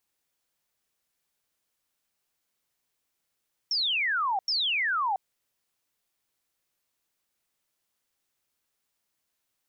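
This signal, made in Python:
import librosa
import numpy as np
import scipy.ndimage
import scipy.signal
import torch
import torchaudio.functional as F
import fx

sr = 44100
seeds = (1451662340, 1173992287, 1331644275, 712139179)

y = fx.laser_zaps(sr, level_db=-24, start_hz=5600.0, end_hz=740.0, length_s=0.68, wave='sine', shots=2, gap_s=0.09)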